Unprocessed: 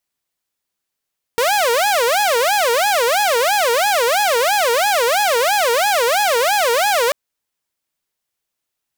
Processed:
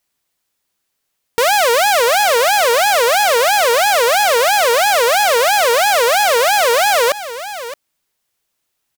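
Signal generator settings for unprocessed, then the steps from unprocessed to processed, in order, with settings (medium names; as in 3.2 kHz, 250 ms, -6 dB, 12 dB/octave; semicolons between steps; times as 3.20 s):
siren wail 461–841 Hz 3 per s saw -11 dBFS 5.74 s
delay 618 ms -18 dB; in parallel at +2.5 dB: peak limiter -21 dBFS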